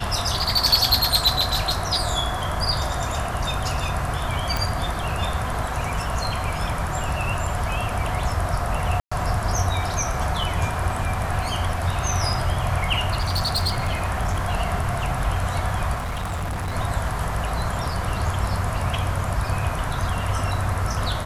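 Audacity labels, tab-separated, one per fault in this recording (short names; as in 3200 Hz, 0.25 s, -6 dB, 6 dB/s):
4.570000	4.570000	pop
9.000000	9.120000	gap 0.115 s
13.180000	14.550000	clipped -18 dBFS
15.940000	16.760000	clipped -24 dBFS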